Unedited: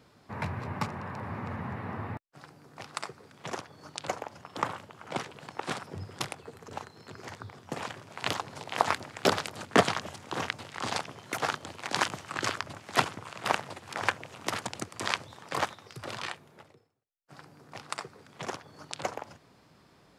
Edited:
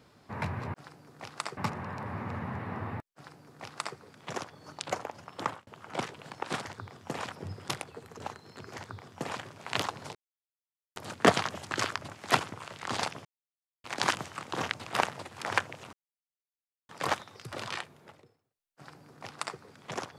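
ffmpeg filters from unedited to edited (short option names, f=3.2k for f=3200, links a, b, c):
-filter_complex "[0:a]asplit=16[a][b][c][d][e][f][g][h][i][j][k][l][m][n][o][p];[a]atrim=end=0.742[q];[b]atrim=start=2.308:end=3.142[r];[c]atrim=start=0.738:end=4.84,asetpts=PTS-STARTPTS,afade=t=out:st=3.832:d=0.27[s];[d]atrim=start=4.84:end=5.822,asetpts=PTS-STARTPTS,afade=t=in:d=0.004:c=hsin[t];[e]atrim=start=7.268:end=7.932[u];[f]atrim=start=5.818:end=8.66,asetpts=PTS-STARTPTS,afade=t=out:st=2.838:d=0.004:c=hsin[v];[g]atrim=start=8.66:end=9.47,asetpts=PTS-STARTPTS,volume=0[w];[h]atrim=start=9.47:end=10.222,asetpts=PTS-STARTPTS,afade=t=in:d=0.004:c=hsin[x];[i]atrim=start=12.358:end=13.372[y];[j]atrim=start=10.648:end=11.18,asetpts=PTS-STARTPTS,afade=t=out:st=0.528:d=0.004:c=hsin[z];[k]atrim=start=11.18:end=11.77,asetpts=PTS-STARTPTS,volume=0[aa];[l]atrim=start=11.77:end=12.362,asetpts=PTS-STARTPTS,afade=t=in:d=0.004:c=hsin[ab];[m]atrim=start=10.218:end=10.652[ac];[n]atrim=start=13.368:end=14.44,asetpts=PTS-STARTPTS,afade=t=out:st=1.068:d=0.004:c=hsin[ad];[o]atrim=start=14.44:end=15.4,asetpts=PTS-STARTPTS,volume=0[ae];[p]atrim=start=15.4,asetpts=PTS-STARTPTS,afade=t=in:d=0.004:c=hsin[af];[q][r]acrossfade=d=0.004:c1=hsin:c2=hsin[ag];[s][t]concat=n=2:v=0:a=1[ah];[ag][ah]acrossfade=d=0.004:c1=hsin:c2=hsin[ai];[ai][u]acrossfade=d=0.004:c1=hsin:c2=hsin[aj];[v][w][x]concat=n=3:v=0:a=1[ak];[aj][ak]acrossfade=d=0.004:c1=hsin:c2=hsin[al];[al][y]acrossfade=d=0.004:c1=hsin:c2=hsin[am];[z][aa][ab]concat=n=3:v=0:a=1[an];[am][an]acrossfade=d=0.004:c1=hsin:c2=hsin[ao];[ao][ac]acrossfade=d=0.004:c1=hsin:c2=hsin[ap];[ad][ae][af]concat=n=3:v=0:a=1[aq];[ap][aq]acrossfade=d=0.004:c1=hsin:c2=hsin"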